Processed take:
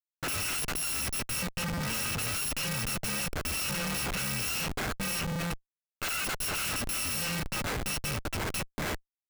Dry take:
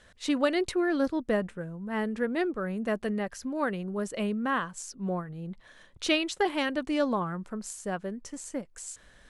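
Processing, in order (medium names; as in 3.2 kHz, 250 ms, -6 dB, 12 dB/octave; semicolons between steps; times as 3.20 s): bit-reversed sample order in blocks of 128 samples; high-pass 48 Hz 12 dB/octave; high-order bell 1.9 kHz +10 dB 1.3 oct; level rider gain up to 3.5 dB; flange 0.37 Hz, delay 7.3 ms, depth 9.9 ms, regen +7%; Schmitt trigger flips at -34.5 dBFS; trim -1.5 dB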